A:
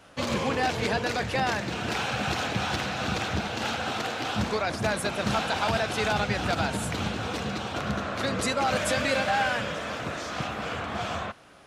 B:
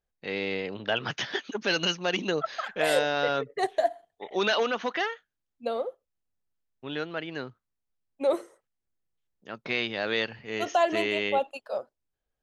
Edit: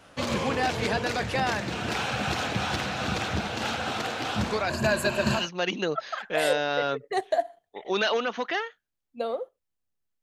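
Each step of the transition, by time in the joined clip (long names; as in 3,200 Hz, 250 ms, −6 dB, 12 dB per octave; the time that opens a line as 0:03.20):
A
0:04.68–0:05.50: EQ curve with evenly spaced ripples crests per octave 1.4, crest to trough 12 dB
0:05.41: continue with B from 0:01.87, crossfade 0.18 s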